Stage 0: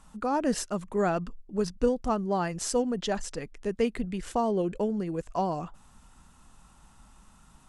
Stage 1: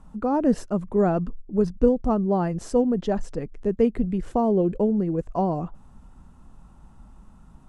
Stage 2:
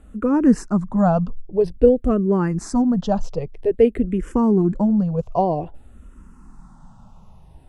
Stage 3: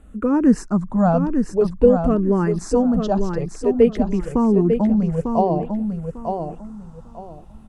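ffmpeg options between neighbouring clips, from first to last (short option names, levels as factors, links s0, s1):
-af "tiltshelf=f=1200:g=9.5,volume=0.891"
-filter_complex "[0:a]asplit=2[s0][s1];[s1]afreqshift=-0.51[s2];[s0][s2]amix=inputs=2:normalize=1,volume=2.24"
-af "aecho=1:1:898|1796|2694:0.501|0.12|0.0289"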